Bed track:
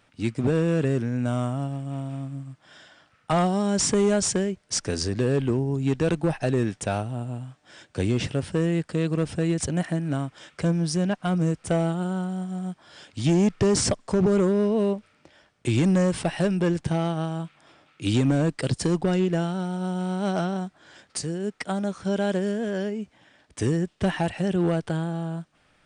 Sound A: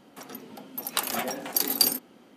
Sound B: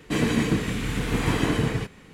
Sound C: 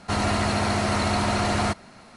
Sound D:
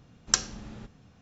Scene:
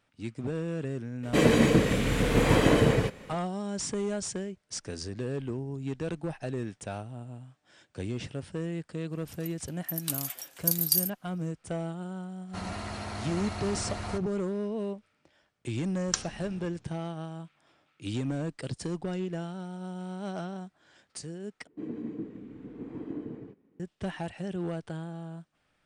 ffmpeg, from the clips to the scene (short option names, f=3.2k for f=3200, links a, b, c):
-filter_complex "[2:a]asplit=2[a][b];[0:a]volume=-10.5dB[c];[a]equalizer=f=550:t=o:w=0.57:g=11[d];[1:a]aderivative[e];[3:a]asubboost=boost=3.5:cutoff=120[f];[b]bandpass=f=310:t=q:w=2.3:csg=0[g];[c]asplit=2[h][i];[h]atrim=end=21.674[j];[g]atrim=end=2.13,asetpts=PTS-STARTPTS,volume=-9.5dB[k];[i]atrim=start=23.796[l];[d]atrim=end=2.13,asetpts=PTS-STARTPTS,afade=t=in:d=0.004:c=hsin,afade=t=out:st=2.126:d=0.004:c=hsin,adelay=1230[m];[e]atrim=end=2.36,asetpts=PTS-STARTPTS,volume=-4dB,afade=t=in:d=0.004:c=hsin,afade=t=out:st=2.356:d=0.004:c=hsin,adelay=9110[n];[f]atrim=end=2.16,asetpts=PTS-STARTPTS,volume=-14dB,afade=t=in:d=0.05,afade=t=out:st=2.11:d=0.05,adelay=12450[o];[4:a]atrim=end=1.21,asetpts=PTS-STARTPTS,volume=-6dB,afade=t=in:d=0.004:c=hsin,afade=t=out:st=1.206:d=0.004:c=hsin,adelay=15800[p];[j][k]acrossfade=d=0.004:c1=hsin:c2=hsin[q];[q][l]acrossfade=d=0.004:c1=hsin:c2=hsin[r];[r][m][n][o][p]amix=inputs=5:normalize=0"